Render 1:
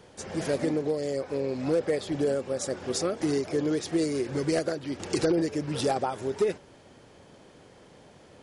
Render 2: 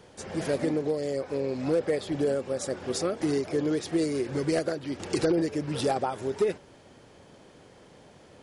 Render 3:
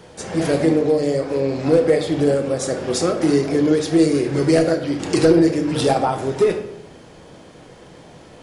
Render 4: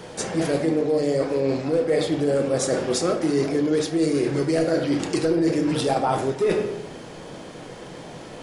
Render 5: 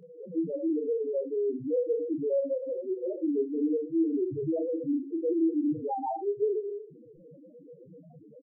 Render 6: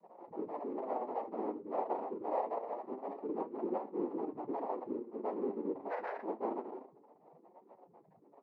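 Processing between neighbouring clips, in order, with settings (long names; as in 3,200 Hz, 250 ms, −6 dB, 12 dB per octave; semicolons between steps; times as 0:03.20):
dynamic equaliser 6,300 Hz, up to −3 dB, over −51 dBFS, Q 1.6
rectangular room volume 180 cubic metres, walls mixed, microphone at 0.63 metres; level +8 dB
parametric band 67 Hz −8.5 dB 1 octave; reversed playback; downward compressor 6 to 1, threshold −24 dBFS, peak gain reduction 14 dB; reversed playback; level +5 dB
low-pass filter 3,300 Hz 24 dB per octave; spectral peaks only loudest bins 1; double-tracking delay 27 ms −10 dB
cochlear-implant simulation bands 6; high-pass filter 330 Hz 12 dB per octave; flanger 0.26 Hz, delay 5.1 ms, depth 5.7 ms, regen +64%; level −3 dB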